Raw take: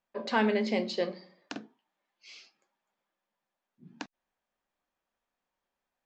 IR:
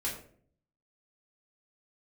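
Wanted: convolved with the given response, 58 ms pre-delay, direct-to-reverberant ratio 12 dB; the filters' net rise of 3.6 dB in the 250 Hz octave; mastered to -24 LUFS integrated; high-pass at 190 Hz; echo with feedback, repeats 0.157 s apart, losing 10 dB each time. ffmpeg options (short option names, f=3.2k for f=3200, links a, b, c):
-filter_complex "[0:a]highpass=190,equalizer=f=250:t=o:g=6.5,aecho=1:1:157|314|471|628:0.316|0.101|0.0324|0.0104,asplit=2[a][b];[1:a]atrim=start_sample=2205,adelay=58[c];[b][c]afir=irnorm=-1:irlink=0,volume=-15.5dB[d];[a][d]amix=inputs=2:normalize=0,volume=5dB"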